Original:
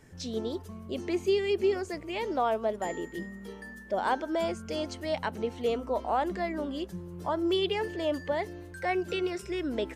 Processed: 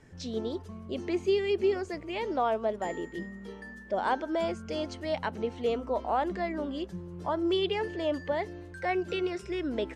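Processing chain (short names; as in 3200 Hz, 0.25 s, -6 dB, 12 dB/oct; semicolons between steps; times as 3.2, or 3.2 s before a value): air absorption 58 m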